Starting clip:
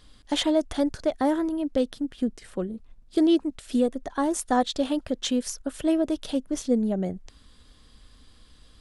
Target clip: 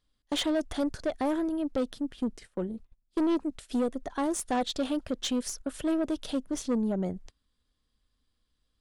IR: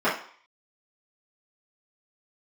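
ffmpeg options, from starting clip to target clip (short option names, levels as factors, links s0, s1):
-af "agate=range=0.0891:threshold=0.00794:ratio=16:detection=peak,aeval=exprs='(tanh(11.2*val(0)+0.2)-tanh(0.2))/11.2':c=same,volume=0.841"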